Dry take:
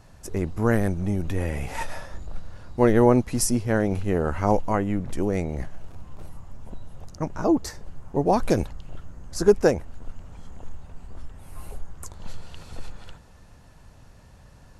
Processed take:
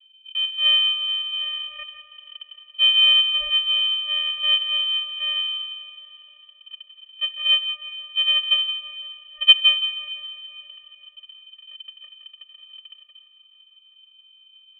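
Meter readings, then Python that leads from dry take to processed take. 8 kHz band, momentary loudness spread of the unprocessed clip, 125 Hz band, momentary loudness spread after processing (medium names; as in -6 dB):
under -40 dB, 23 LU, under -40 dB, 20 LU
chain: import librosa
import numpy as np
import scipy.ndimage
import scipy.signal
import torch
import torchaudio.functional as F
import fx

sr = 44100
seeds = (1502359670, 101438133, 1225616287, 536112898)

y = fx.halfwave_hold(x, sr)
y = fx.env_lowpass(y, sr, base_hz=540.0, full_db=-14.0)
y = fx.rotary_switch(y, sr, hz=1.1, then_hz=6.0, switch_at_s=6.37)
y = fx.vocoder(y, sr, bands=4, carrier='square', carrier_hz=312.0)
y = fx.echo_feedback(y, sr, ms=169, feedback_pct=34, wet_db=-12.5)
y = fx.rev_schroeder(y, sr, rt60_s=3.8, comb_ms=32, drr_db=13.0)
y = fx.freq_invert(y, sr, carrier_hz=3400)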